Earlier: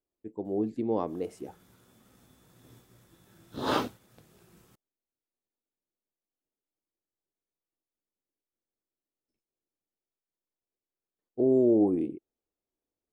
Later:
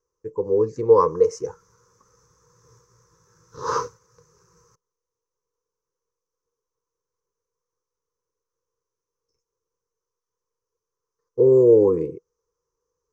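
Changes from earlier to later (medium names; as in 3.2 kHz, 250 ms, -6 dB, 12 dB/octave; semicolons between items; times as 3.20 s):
speech +11.0 dB; master: add FFT filter 160 Hz 0 dB, 230 Hz -19 dB, 340 Hz -10 dB, 480 Hz +11 dB, 690 Hz -25 dB, 1 kHz +11 dB, 3.4 kHz -18 dB, 6.1 kHz +15 dB, 8.8 kHz -14 dB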